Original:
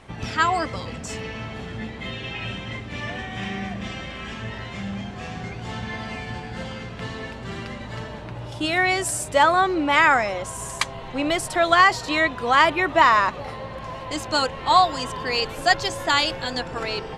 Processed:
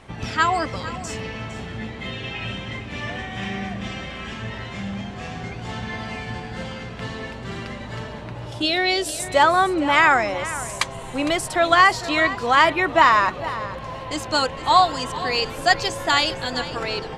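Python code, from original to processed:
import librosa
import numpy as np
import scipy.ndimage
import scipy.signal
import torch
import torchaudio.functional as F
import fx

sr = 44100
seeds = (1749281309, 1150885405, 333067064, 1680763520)

y = fx.graphic_eq(x, sr, hz=(125, 500, 1000, 2000, 4000, 8000), db=(-12, 7, -10, -4, 11, -8), at=(8.62, 9.2))
y = y + 10.0 ** (-14.5 / 20.0) * np.pad(y, (int(457 * sr / 1000.0), 0))[:len(y)]
y = y * librosa.db_to_amplitude(1.0)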